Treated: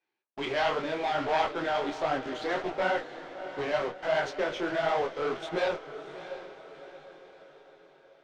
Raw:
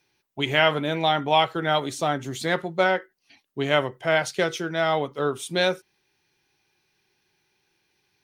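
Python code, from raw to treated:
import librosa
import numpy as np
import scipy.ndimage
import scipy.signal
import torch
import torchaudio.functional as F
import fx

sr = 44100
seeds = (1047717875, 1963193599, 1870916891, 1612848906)

p1 = np.minimum(x, 2.0 * 10.0 ** (-14.5 / 20.0) - x)
p2 = scipy.signal.sosfilt(scipy.signal.butter(2, 360.0, 'highpass', fs=sr, output='sos'), p1)
p3 = fx.high_shelf(p2, sr, hz=4100.0, db=-11.0)
p4 = fx.fuzz(p3, sr, gain_db=46.0, gate_db=-40.0)
p5 = p3 + (p4 * 10.0 ** (-9.0 / 20.0))
p6 = fx.air_absorb(p5, sr, metres=160.0)
p7 = p6 + fx.echo_diffused(p6, sr, ms=672, feedback_pct=49, wet_db=-12.0, dry=0)
p8 = fx.detune_double(p7, sr, cents=50)
y = p8 * 10.0 ** (-5.5 / 20.0)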